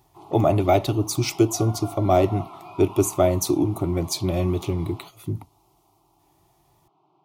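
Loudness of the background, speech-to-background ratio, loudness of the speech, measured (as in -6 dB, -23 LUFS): -42.0 LUFS, 19.0 dB, -23.0 LUFS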